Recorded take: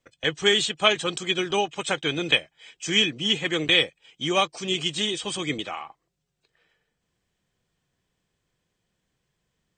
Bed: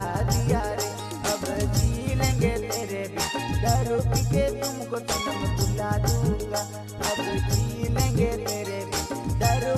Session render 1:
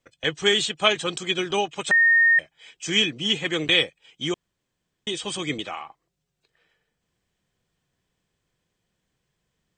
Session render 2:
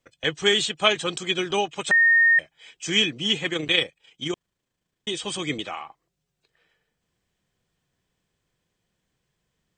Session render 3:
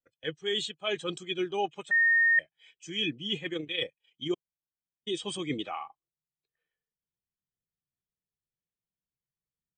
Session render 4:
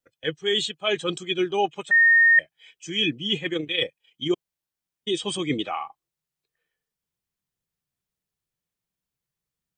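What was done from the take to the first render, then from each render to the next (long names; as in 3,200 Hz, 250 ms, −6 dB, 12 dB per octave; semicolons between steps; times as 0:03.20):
0:01.91–0:02.39: beep over 1,840 Hz −13.5 dBFS; 0:04.34–0:05.07: fill with room tone
0:03.49–0:05.08: amplitude modulation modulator 27 Hz, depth 30%
reversed playback; downward compressor 8 to 1, threshold −28 dBFS, peak gain reduction 15 dB; reversed playback; every bin expanded away from the loudest bin 1.5 to 1
level +7 dB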